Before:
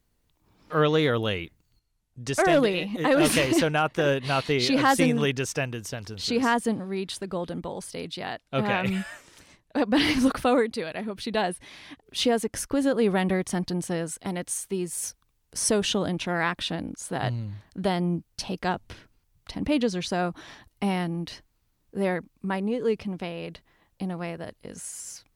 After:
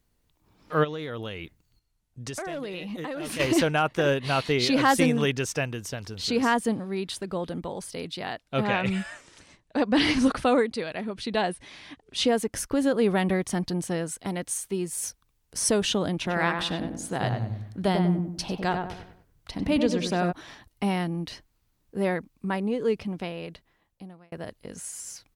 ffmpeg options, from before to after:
ffmpeg -i in.wav -filter_complex "[0:a]asplit=3[link_01][link_02][link_03];[link_01]afade=type=out:start_time=0.83:duration=0.02[link_04];[link_02]acompressor=threshold=-31dB:ratio=6:attack=3.2:release=140:knee=1:detection=peak,afade=type=in:start_time=0.83:duration=0.02,afade=type=out:start_time=3.39:duration=0.02[link_05];[link_03]afade=type=in:start_time=3.39:duration=0.02[link_06];[link_04][link_05][link_06]amix=inputs=3:normalize=0,asettb=1/sr,asplit=3[link_07][link_08][link_09];[link_07]atrim=end=8.644[link_10];[link_08]atrim=start=8.64:end=12.28,asetpts=PTS-STARTPTS,afade=type=in:duration=0.004:curve=qsin,afade=type=out:start_time=3.636:duration=0.004:curve=qsin,lowpass=frequency=9800:width=0.5412,lowpass=frequency=9800:width=1.3066[link_11];[link_09]atrim=start=12.276[link_12];[link_10][link_11]acrossfade=duration=0.004:curve1=hsin:curve2=qsin[link_13];[link_13][link_12]acrossfade=duration=0.004:curve1=qsin:curve2=hsin,asplit=3[link_14][link_15][link_16];[link_14]afade=type=out:start_time=16.25:duration=0.02[link_17];[link_15]asplit=2[link_18][link_19];[link_19]adelay=96,lowpass=frequency=1600:poles=1,volume=-4dB,asplit=2[link_20][link_21];[link_21]adelay=96,lowpass=frequency=1600:poles=1,volume=0.42,asplit=2[link_22][link_23];[link_23]adelay=96,lowpass=frequency=1600:poles=1,volume=0.42,asplit=2[link_24][link_25];[link_25]adelay=96,lowpass=frequency=1600:poles=1,volume=0.42,asplit=2[link_26][link_27];[link_27]adelay=96,lowpass=frequency=1600:poles=1,volume=0.42[link_28];[link_18][link_20][link_22][link_24][link_26][link_28]amix=inputs=6:normalize=0,afade=type=in:start_time=16.25:duration=0.02,afade=type=out:start_time=20.31:duration=0.02[link_29];[link_16]afade=type=in:start_time=20.31:duration=0.02[link_30];[link_17][link_29][link_30]amix=inputs=3:normalize=0,asplit=2[link_31][link_32];[link_31]atrim=end=24.32,asetpts=PTS-STARTPTS,afade=type=out:start_time=23.28:duration=1.04[link_33];[link_32]atrim=start=24.32,asetpts=PTS-STARTPTS,afade=type=in:duration=0.004:curve=hsin[link_34];[link_33][link_34]concat=n=2:v=0:a=1" out.wav

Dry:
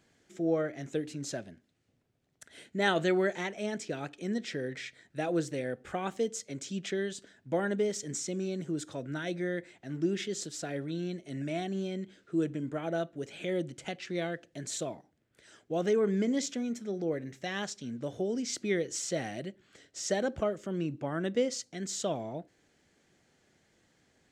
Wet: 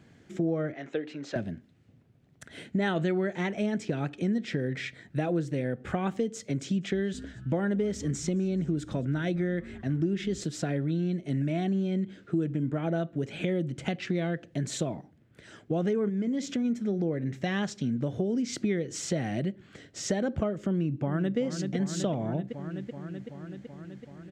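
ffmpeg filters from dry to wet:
ffmpeg -i in.wav -filter_complex "[0:a]asettb=1/sr,asplit=3[link_01][link_02][link_03];[link_01]atrim=end=0.734[link_04];[link_02]atrim=start=0.73:end=1.36,asetpts=PTS-STARTPTS,afade=type=in:duration=0.004:curve=qsin,afade=type=out:start_time=0.626:duration=0.004:curve=qsin,highpass=520,lowpass=3500[link_05];[link_03]atrim=start=1.356[link_06];[link_04][link_05]acrossfade=duration=0.004:curve1=hsin:curve2=qsin[link_07];[link_07][link_06]acrossfade=duration=0.004:curve1=qsin:curve2=hsin,asettb=1/sr,asplit=3[link_08][link_09][link_10];[link_08]atrim=end=6.384[link_11];[link_09]atrim=start=6.38:end=10.44,asetpts=PTS-STARTPTS,afade=type=in:duration=0.004:curve=qsin,afade=type=out:start_time=4.056:duration=0.004:curve=qsin,asplit=4[link_12][link_13][link_14][link_15];[link_13]adelay=215,afreqshift=-130,volume=-23dB[link_16];[link_14]adelay=430,afreqshift=-260,volume=-29.2dB[link_17];[link_15]adelay=645,afreqshift=-390,volume=-35.4dB[link_18];[link_12][link_16][link_17][link_18]amix=inputs=4:normalize=0,atrim=end_sample=179046[link_19];[link_10]atrim=start=10.436[link_20];[link_11][link_19]acrossfade=duration=0.004:curve1=hsin:curve2=qsin[link_21];[link_21][link_20]acrossfade=duration=0.004:curve1=qsin:curve2=hsin,asplit=3[link_22][link_23][link_24];[link_22]afade=type=out:start_time=16.08:duration=0.02[link_25];[link_23]acompressor=threshold=-36dB:ratio=3:attack=3.2:release=140:knee=1:detection=peak,afade=type=in:start_time=16.08:duration=0.02,afade=type=out:start_time=16.64:duration=0.02[link_26];[link_24]afade=type=in:start_time=16.64:duration=0.02[link_27];[link_25][link_26][link_27]amix=inputs=3:normalize=0,asplit=2[link_28][link_29];[link_29]afade=type=in:start_time=20.68:duration=0.01,afade=type=out:start_time=21.38:duration=0.01,aecho=0:1:380|760|1140|1520|1900|2280|2660|3040|3420|3800|4180|4560:0.298538|0.223904|0.167928|0.125946|0.0944594|0.0708445|0.0531334|0.03985|0.0298875|0.0224157|0.0168117|0.0126088[link_30];[link_28][link_30]amix=inputs=2:normalize=0,highpass=frequency=170:poles=1,bass=frequency=250:gain=15,treble=frequency=4000:gain=-8,acompressor=threshold=-34dB:ratio=4,volume=7.5dB" out.wav

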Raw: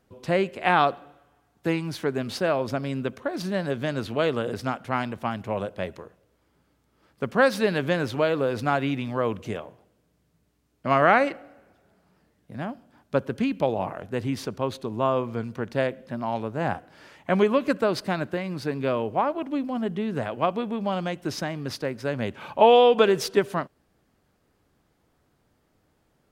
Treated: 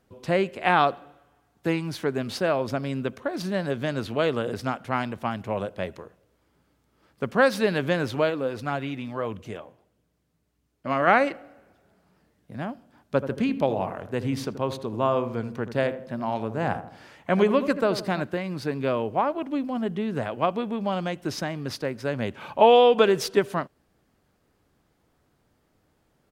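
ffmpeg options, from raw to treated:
ffmpeg -i in.wav -filter_complex "[0:a]asplit=3[link_01][link_02][link_03];[link_01]afade=type=out:start_time=8.29:duration=0.02[link_04];[link_02]flanger=delay=0.3:depth=3.6:regen=66:speed=1.6:shape=sinusoidal,afade=type=in:start_time=8.29:duration=0.02,afade=type=out:start_time=11.06:duration=0.02[link_05];[link_03]afade=type=in:start_time=11.06:duration=0.02[link_06];[link_04][link_05][link_06]amix=inputs=3:normalize=0,asplit=3[link_07][link_08][link_09];[link_07]afade=type=out:start_time=13.2:duration=0.02[link_10];[link_08]asplit=2[link_11][link_12];[link_12]adelay=81,lowpass=frequency=1100:poles=1,volume=-10.5dB,asplit=2[link_13][link_14];[link_14]adelay=81,lowpass=frequency=1100:poles=1,volume=0.49,asplit=2[link_15][link_16];[link_16]adelay=81,lowpass=frequency=1100:poles=1,volume=0.49,asplit=2[link_17][link_18];[link_18]adelay=81,lowpass=frequency=1100:poles=1,volume=0.49,asplit=2[link_19][link_20];[link_20]adelay=81,lowpass=frequency=1100:poles=1,volume=0.49[link_21];[link_11][link_13][link_15][link_17][link_19][link_21]amix=inputs=6:normalize=0,afade=type=in:start_time=13.2:duration=0.02,afade=type=out:start_time=18.21:duration=0.02[link_22];[link_09]afade=type=in:start_time=18.21:duration=0.02[link_23];[link_10][link_22][link_23]amix=inputs=3:normalize=0" out.wav

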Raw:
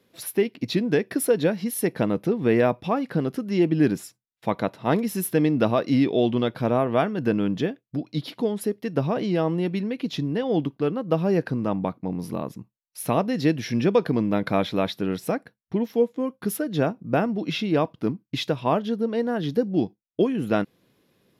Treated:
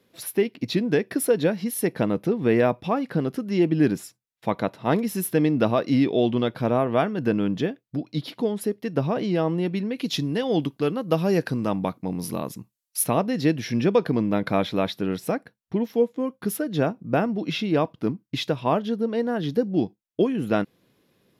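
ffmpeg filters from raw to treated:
ffmpeg -i in.wav -filter_complex "[0:a]asettb=1/sr,asplit=3[link_01][link_02][link_03];[link_01]atrim=end=9.964[link_04];[link_02]atrim=start=9.96:end=13.04,asetpts=PTS-STARTPTS,afade=type=in:duration=0.004:curve=qsin,afade=type=out:start_time=3.076:duration=0.004:curve=qsin,equalizer=frequency=12000:width_type=o:width=2.6:gain=12[link_05];[link_03]atrim=start=13.036[link_06];[link_04][link_05]acrossfade=duration=0.004:curve1=hsin:curve2=qsin[link_07];[link_07][link_06]acrossfade=duration=0.004:curve1=qsin:curve2=hsin" out.wav

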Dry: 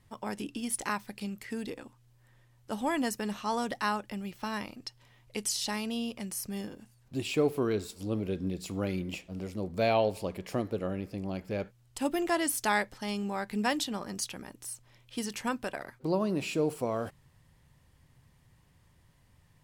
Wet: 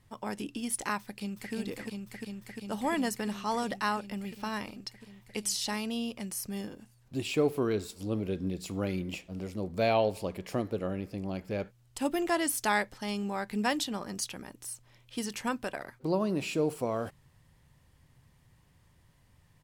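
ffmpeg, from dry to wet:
ffmpeg -i in.wav -filter_complex "[0:a]asplit=2[link_01][link_02];[link_02]afade=type=in:start_time=1.01:duration=0.01,afade=type=out:start_time=1.54:duration=0.01,aecho=0:1:350|700|1050|1400|1750|2100|2450|2800|3150|3500|3850|4200:0.794328|0.675179|0.573902|0.487817|0.414644|0.352448|0.299581|0.254643|0.216447|0.18398|0.156383|0.132925[link_03];[link_01][link_03]amix=inputs=2:normalize=0" out.wav

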